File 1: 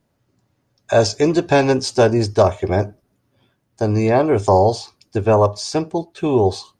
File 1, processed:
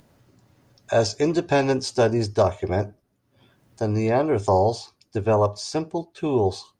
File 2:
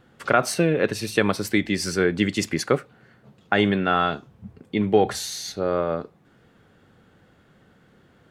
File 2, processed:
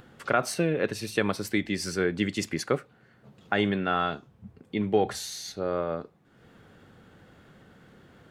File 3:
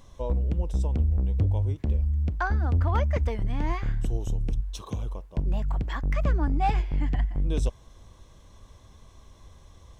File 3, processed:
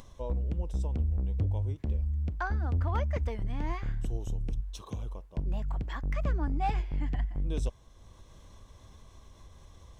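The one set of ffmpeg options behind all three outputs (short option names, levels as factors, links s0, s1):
-af "acompressor=mode=upward:threshold=0.0112:ratio=2.5,volume=0.531"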